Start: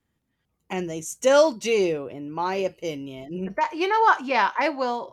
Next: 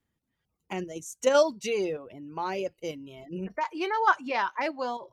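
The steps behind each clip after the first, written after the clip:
reverb reduction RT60 0.55 s
in parallel at 0 dB: output level in coarse steps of 16 dB
on the sum: level −8.5 dB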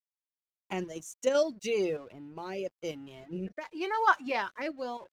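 dead-zone distortion −55 dBFS
rotating-speaker cabinet horn 0.9 Hz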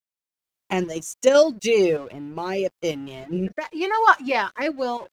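automatic gain control gain up to 11.5 dB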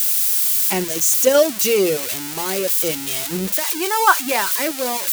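spike at every zero crossing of −12 dBFS
level +1 dB

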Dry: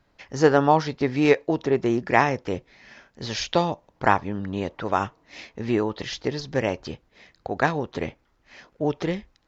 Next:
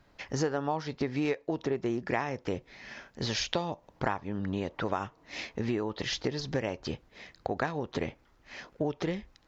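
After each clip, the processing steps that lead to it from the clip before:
downward compressor 5 to 1, threshold −31 dBFS, peak gain reduction 17.5 dB
level +2.5 dB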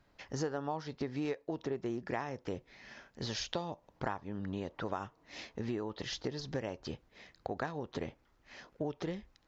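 dynamic equaliser 2,300 Hz, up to −5 dB, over −51 dBFS, Q 2.8
level −6 dB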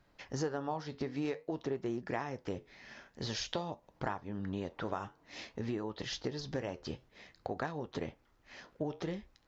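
flanger 0.51 Hz, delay 5.3 ms, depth 7.7 ms, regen −76%
level +4.5 dB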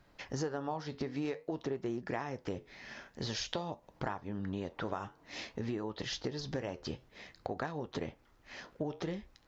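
downward compressor 1.5 to 1, threshold −44 dBFS, peak gain reduction 5.5 dB
level +4 dB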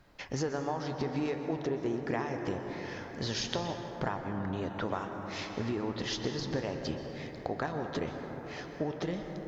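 dense smooth reverb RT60 4.9 s, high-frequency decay 0.25×, pre-delay 110 ms, DRR 4.5 dB
level +3 dB

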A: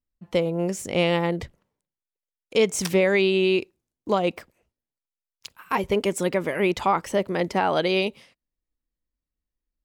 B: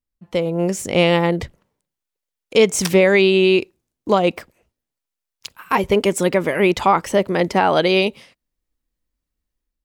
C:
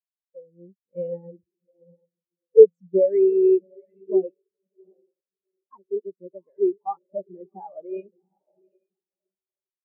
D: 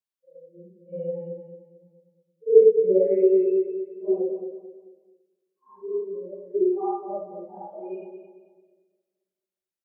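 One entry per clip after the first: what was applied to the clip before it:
automatic gain control gain up to 7 dB
feedback delay with all-pass diffusion 768 ms, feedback 48%, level −6 dB; every bin expanded away from the loudest bin 4 to 1; level +1 dB
random phases in long frames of 200 ms; on a send: repeating echo 220 ms, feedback 35%, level −8 dB

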